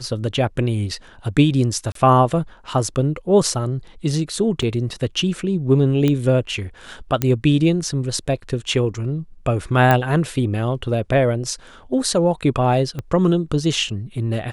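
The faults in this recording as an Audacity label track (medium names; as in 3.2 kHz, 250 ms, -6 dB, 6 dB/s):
1.920000	1.950000	dropout 33 ms
4.620000	4.630000	dropout 5.5 ms
6.080000	6.080000	pop -8 dBFS
7.220000	7.220000	pop -5 dBFS
9.910000	9.910000	pop -4 dBFS
12.990000	12.990000	pop -15 dBFS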